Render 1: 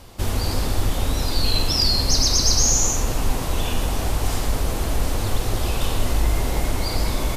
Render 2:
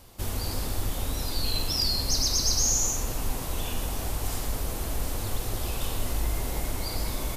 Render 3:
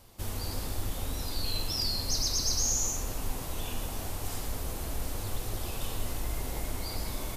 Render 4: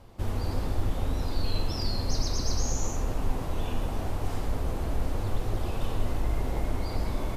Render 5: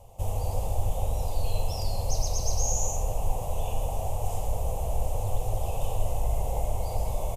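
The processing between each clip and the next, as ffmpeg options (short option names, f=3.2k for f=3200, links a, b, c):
-af "highshelf=f=9.8k:g=11.5,volume=-8.5dB"
-af "flanger=delay=8.9:depth=2.7:regen=-65:speed=0.52:shape=sinusoidal"
-af "lowpass=f=1.2k:p=1,volume=6.5dB"
-af "firequalizer=gain_entry='entry(110,0);entry(290,-18);entry(500,3);entry(790,5);entry(1500,-21);entry(2700,-1);entry(4300,-10);entry(6700,7)':delay=0.05:min_phase=1,volume=1dB"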